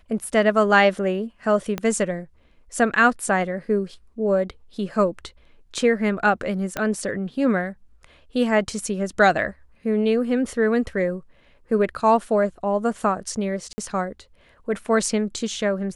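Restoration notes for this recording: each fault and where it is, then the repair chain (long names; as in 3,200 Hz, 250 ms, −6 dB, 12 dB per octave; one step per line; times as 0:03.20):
0:01.78: click −12 dBFS
0:06.77: click −10 dBFS
0:13.73–0:13.78: drop-out 50 ms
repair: click removal
repair the gap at 0:13.73, 50 ms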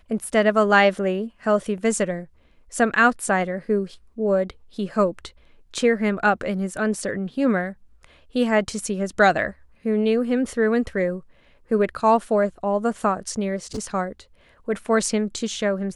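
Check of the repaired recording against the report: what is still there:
0:01.78: click
0:06.77: click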